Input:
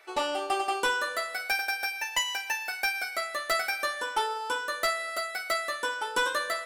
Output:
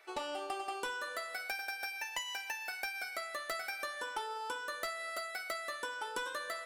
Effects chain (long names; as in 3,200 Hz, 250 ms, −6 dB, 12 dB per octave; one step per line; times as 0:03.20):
downward compressor, threshold −31 dBFS, peak gain reduction 8 dB
level −5 dB